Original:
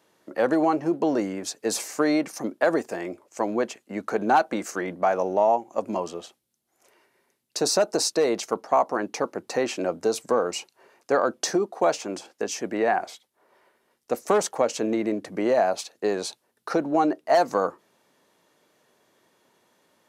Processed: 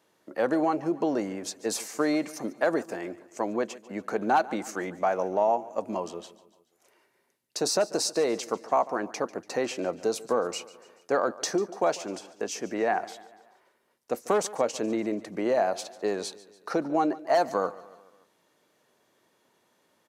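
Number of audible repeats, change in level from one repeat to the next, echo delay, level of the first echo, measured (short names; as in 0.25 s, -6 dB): 3, -5.5 dB, 0.144 s, -19.0 dB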